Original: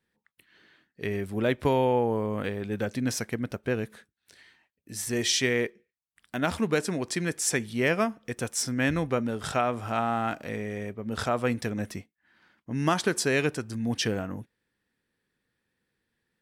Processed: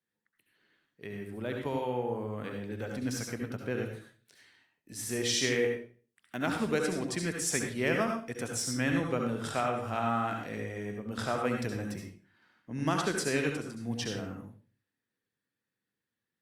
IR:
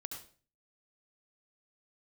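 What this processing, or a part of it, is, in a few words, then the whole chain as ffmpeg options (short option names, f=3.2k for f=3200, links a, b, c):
far-field microphone of a smart speaker: -filter_complex "[1:a]atrim=start_sample=2205[a];[0:a][a]afir=irnorm=-1:irlink=0,highpass=f=99:w=0.5412,highpass=f=99:w=1.3066,dynaudnorm=f=360:g=17:m=6dB,volume=-7dB" -ar 48000 -c:a libopus -b:a 48k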